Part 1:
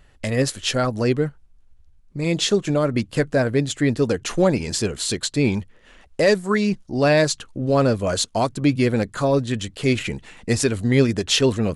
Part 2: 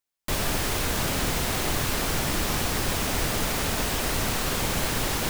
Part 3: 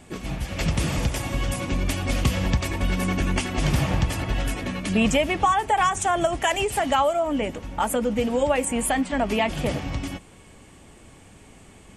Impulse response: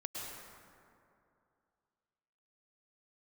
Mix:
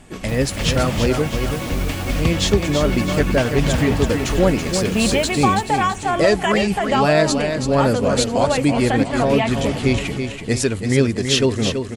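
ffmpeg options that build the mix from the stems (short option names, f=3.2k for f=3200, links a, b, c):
-filter_complex "[0:a]volume=0.5dB,asplit=3[a][b][c];[b]volume=-7dB[d];[1:a]volume=-8dB,asplit=2[e][f];[f]volume=-10dB[g];[2:a]acrossover=split=5200[h][i];[i]acompressor=threshold=-43dB:ratio=4:attack=1:release=60[j];[h][j]amix=inputs=2:normalize=0,volume=1.5dB,asplit=2[k][l];[l]volume=-16dB[m];[c]apad=whole_len=233470[n];[e][n]sidechaincompress=threshold=-22dB:ratio=8:attack=16:release=400[o];[d][g][m]amix=inputs=3:normalize=0,aecho=0:1:330|660|990|1320|1650|1980|2310:1|0.48|0.23|0.111|0.0531|0.0255|0.0122[p];[a][o][k][p]amix=inputs=4:normalize=0"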